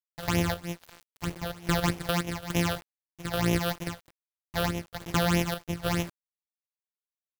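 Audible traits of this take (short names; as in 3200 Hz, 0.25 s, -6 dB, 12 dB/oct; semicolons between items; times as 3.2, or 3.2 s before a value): a buzz of ramps at a fixed pitch in blocks of 256 samples; phasing stages 8, 3.2 Hz, lowest notch 270–1400 Hz; a quantiser's noise floor 8-bit, dither none; chopped level 1.2 Hz, depth 60%, duty 65%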